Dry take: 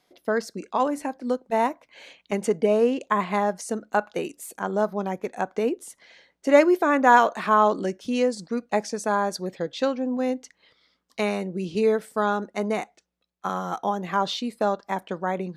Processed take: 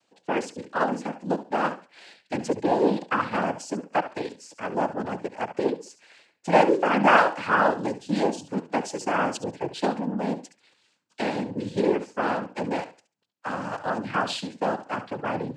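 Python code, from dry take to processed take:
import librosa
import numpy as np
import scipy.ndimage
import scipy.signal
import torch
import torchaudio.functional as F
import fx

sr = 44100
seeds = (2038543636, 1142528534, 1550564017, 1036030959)

y = fx.room_flutter(x, sr, wall_m=11.9, rt60_s=0.32)
y = fx.noise_vocoder(y, sr, seeds[0], bands=8)
y = y * librosa.db_to_amplitude(-1.5)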